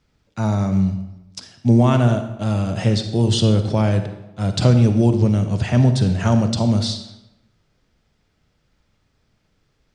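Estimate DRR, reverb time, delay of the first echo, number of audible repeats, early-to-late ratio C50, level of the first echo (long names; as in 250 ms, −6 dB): 7.5 dB, 0.95 s, no echo audible, no echo audible, 8.5 dB, no echo audible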